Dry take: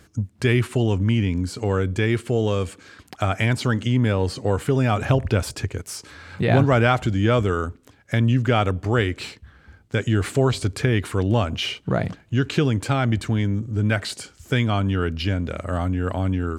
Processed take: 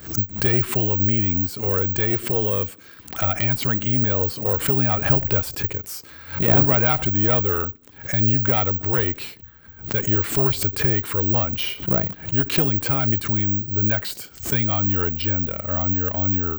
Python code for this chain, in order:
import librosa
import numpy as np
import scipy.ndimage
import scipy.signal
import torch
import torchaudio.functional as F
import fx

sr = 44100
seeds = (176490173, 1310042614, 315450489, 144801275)

y = fx.tube_stage(x, sr, drive_db=11.0, bias=0.75)
y = (np.kron(scipy.signal.resample_poly(y, 1, 2), np.eye(2)[0]) * 2)[:len(y)]
y = fx.pre_swell(y, sr, db_per_s=140.0)
y = y * 10.0 ** (2.5 / 20.0)